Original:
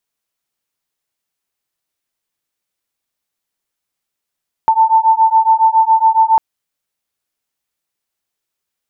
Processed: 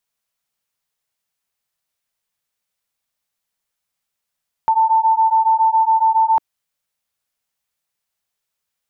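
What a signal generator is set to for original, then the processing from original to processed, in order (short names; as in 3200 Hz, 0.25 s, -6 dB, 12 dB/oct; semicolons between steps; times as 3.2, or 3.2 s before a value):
beating tones 887 Hz, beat 7.2 Hz, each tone -11 dBFS 1.70 s
bell 330 Hz -11.5 dB 0.45 oct; limiter -10 dBFS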